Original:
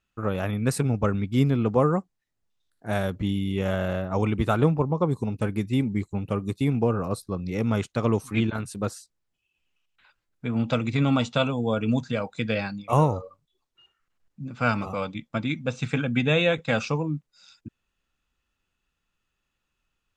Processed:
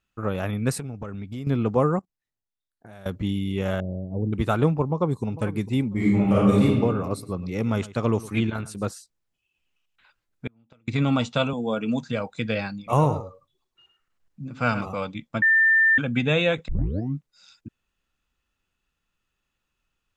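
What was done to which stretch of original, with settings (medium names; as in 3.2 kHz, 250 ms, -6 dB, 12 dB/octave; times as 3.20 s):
0.78–1.47 s: compression, threshold -30 dBFS
1.99–3.06 s: level held to a coarse grid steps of 22 dB
3.80–4.33 s: Gaussian low-pass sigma 18 samples
4.86–5.32 s: echo throw 450 ms, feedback 15%, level -15 dB
5.92–6.62 s: reverb throw, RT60 1.4 s, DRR -9.5 dB
7.12–8.91 s: delay 108 ms -17.5 dB
10.47–10.88 s: inverted gate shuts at -20 dBFS, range -36 dB
11.53–12.09 s: Chebyshev high-pass 160 Hz, order 3
12.76–14.81 s: delay 106 ms -11 dB
15.42–15.98 s: bleep 1.79 kHz -14.5 dBFS
16.68 s: tape start 0.48 s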